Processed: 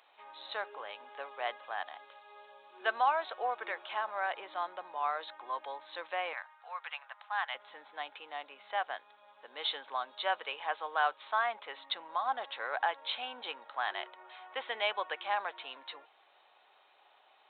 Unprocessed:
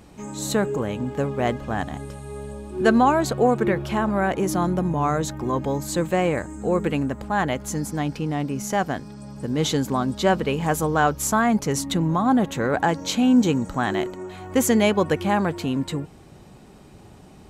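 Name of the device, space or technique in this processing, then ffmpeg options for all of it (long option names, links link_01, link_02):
musical greeting card: -filter_complex "[0:a]aresample=8000,aresample=44100,highpass=frequency=700:width=0.5412,highpass=frequency=700:width=1.3066,equalizer=frequency=4000:width_type=o:width=0.54:gain=8,asettb=1/sr,asplit=3[link_01][link_02][link_03];[link_01]atrim=end=6.334[link_04];[link_02]atrim=start=6.33:end=7.55,asetpts=PTS-STARTPTS,afade=type=in:duration=0.004:curve=qsin,afade=type=out:start_time=1.216:duration=0.004:curve=qsin,highpass=frequency=830:width=0.5412,highpass=frequency=830:width=1.3066[link_05];[link_03]atrim=start=7.546[link_06];[link_04][link_05]acrossfade=duration=0.004:curve1=hsin:curve2=qsin[link_07];[link_07][link_06]acrossfade=duration=0.004:curve1=qsin:curve2=hsin,volume=-8dB"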